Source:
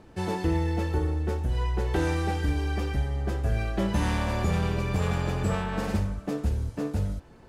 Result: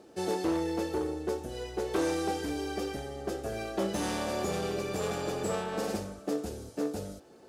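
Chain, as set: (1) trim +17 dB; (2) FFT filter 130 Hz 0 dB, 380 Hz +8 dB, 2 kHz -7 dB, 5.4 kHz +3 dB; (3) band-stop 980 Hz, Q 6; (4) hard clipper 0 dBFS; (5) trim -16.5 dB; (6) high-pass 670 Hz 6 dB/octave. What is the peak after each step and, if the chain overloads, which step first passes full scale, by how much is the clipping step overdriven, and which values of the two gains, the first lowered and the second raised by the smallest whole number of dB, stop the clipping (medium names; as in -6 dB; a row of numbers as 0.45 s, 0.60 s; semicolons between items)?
+1.5 dBFS, +6.5 dBFS, +7.0 dBFS, 0.0 dBFS, -16.5 dBFS, -15.5 dBFS; step 1, 7.0 dB; step 1 +10 dB, step 5 -9.5 dB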